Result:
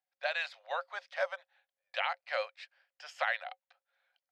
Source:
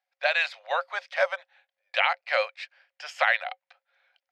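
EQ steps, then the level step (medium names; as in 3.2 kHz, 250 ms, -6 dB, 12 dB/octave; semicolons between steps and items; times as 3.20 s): peaking EQ 2.3 kHz -4 dB 0.45 oct; -8.5 dB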